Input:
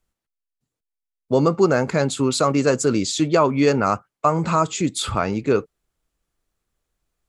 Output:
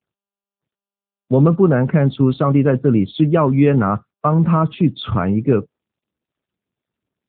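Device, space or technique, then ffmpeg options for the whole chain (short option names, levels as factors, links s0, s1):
mobile call with aggressive noise cancelling: -af "highpass=f=110:p=1,bass=f=250:g=14,treble=f=4000:g=1,afftdn=nr=24:nf=-36" -ar 8000 -c:a libopencore_amrnb -b:a 10200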